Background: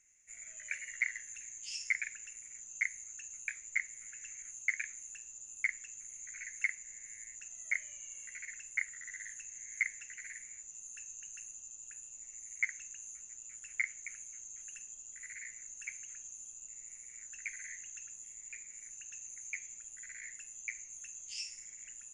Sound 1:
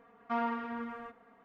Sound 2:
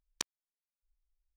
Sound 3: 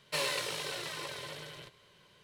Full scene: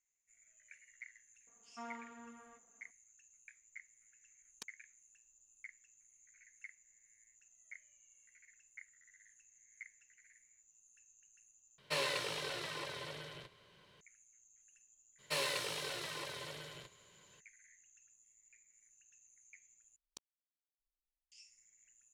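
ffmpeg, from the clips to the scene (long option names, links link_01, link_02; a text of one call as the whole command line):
ffmpeg -i bed.wav -i cue0.wav -i cue1.wav -i cue2.wav -filter_complex "[2:a]asplit=2[link_01][link_02];[3:a]asplit=2[link_03][link_04];[0:a]volume=-19dB[link_05];[1:a]highshelf=frequency=3600:gain=7.5[link_06];[link_01]aecho=1:1:4.6:0.69[link_07];[link_03]highshelf=frequency=7100:gain=-8[link_08];[link_02]equalizer=frequency=1800:width_type=o:width=0.77:gain=-12.5[link_09];[link_05]asplit=3[link_10][link_11][link_12];[link_10]atrim=end=11.784[link_13];[link_08]atrim=end=2.23,asetpts=PTS-STARTPTS,volume=-2dB[link_14];[link_11]atrim=start=14.006:end=19.964[link_15];[link_09]atrim=end=1.36,asetpts=PTS-STARTPTS,volume=-17.5dB[link_16];[link_12]atrim=start=21.316[link_17];[link_06]atrim=end=1.44,asetpts=PTS-STARTPTS,volume=-15.5dB,afade=type=in:duration=0.004:curve=hsin,afade=type=out:start_time=1.436:duration=0.004:curve=hsin,adelay=1470[link_18];[link_07]atrim=end=1.36,asetpts=PTS-STARTPTS,volume=-16dB,afade=type=in:duration=0.004:curve=hsin,afade=type=out:start_time=1.356:duration=0.004:curve=hsin,adelay=194481S[link_19];[link_04]atrim=end=2.23,asetpts=PTS-STARTPTS,volume=-3.5dB,afade=type=in:duration=0.02,afade=type=out:start_time=2.21:duration=0.02,adelay=15180[link_20];[link_13][link_14]acrossfade=duration=0.004:curve1=hsin:curve2=hsin[link_21];[link_21][link_15]acrossfade=duration=0.004:curve1=hsin:curve2=hsin[link_22];[link_22][link_16]acrossfade=duration=0.004:curve1=hsin:curve2=hsin[link_23];[link_23][link_17]acrossfade=duration=0.004:curve1=hsin:curve2=hsin[link_24];[link_24][link_18][link_19][link_20]amix=inputs=4:normalize=0" out.wav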